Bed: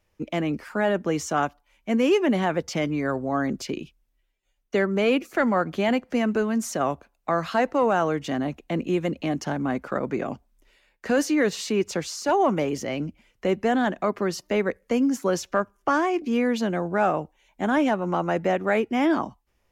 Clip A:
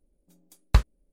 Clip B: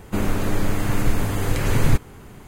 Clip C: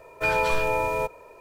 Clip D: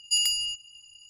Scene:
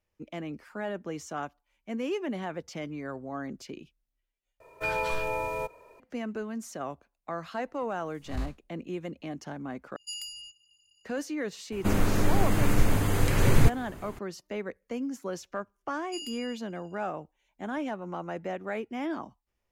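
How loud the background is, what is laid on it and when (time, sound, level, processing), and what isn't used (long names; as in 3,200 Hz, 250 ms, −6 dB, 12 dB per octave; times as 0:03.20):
bed −11.5 dB
0:04.60: overwrite with C −6.5 dB
0:07.63: mix in A −5 dB + spectrum smeared in time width 136 ms
0:09.96: overwrite with D −14.5 dB
0:11.72: mix in B −2.5 dB
0:16.01: mix in D −12.5 dB + high-shelf EQ 3,800 Hz −7.5 dB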